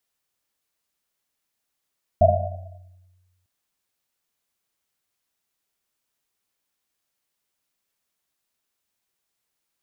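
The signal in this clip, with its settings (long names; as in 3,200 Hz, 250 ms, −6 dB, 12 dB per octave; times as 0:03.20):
drum after Risset length 1.25 s, pitch 91 Hz, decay 1.45 s, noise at 660 Hz, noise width 120 Hz, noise 60%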